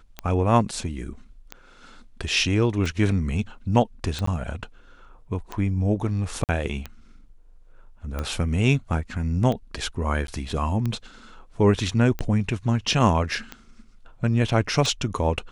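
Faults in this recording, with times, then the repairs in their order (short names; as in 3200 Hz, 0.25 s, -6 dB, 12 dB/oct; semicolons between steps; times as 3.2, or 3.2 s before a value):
tick 45 rpm -16 dBFS
4.26–4.27 gap 14 ms
6.44–6.49 gap 48 ms
10.27–10.28 gap 12 ms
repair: de-click; interpolate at 4.26, 14 ms; interpolate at 6.44, 48 ms; interpolate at 10.27, 12 ms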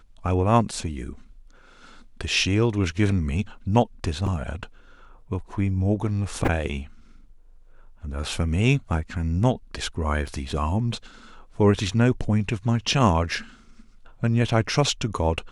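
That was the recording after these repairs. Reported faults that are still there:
none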